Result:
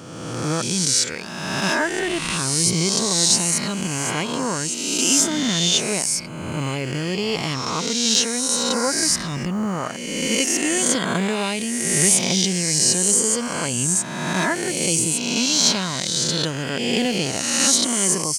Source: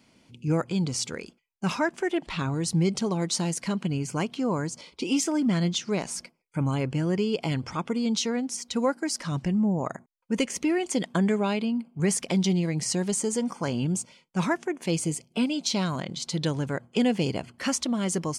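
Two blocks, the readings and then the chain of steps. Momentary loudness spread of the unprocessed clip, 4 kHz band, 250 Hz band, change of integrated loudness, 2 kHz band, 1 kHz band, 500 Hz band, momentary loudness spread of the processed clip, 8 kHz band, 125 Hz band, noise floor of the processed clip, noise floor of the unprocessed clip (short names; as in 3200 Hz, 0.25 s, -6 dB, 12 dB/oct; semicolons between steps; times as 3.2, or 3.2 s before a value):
6 LU, +13.5 dB, +1.5 dB, +8.0 dB, +10.0 dB, +6.0 dB, +3.5 dB, 9 LU, +15.5 dB, +1.0 dB, -30 dBFS, -65 dBFS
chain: spectral swells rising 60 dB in 1.66 s; high shelf 2400 Hz +10.5 dB; companded quantiser 8-bit; gain -1 dB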